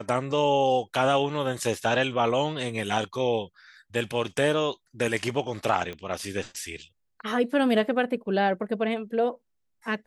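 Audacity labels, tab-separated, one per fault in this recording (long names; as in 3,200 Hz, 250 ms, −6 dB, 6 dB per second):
5.930000	5.930000	click −23 dBFS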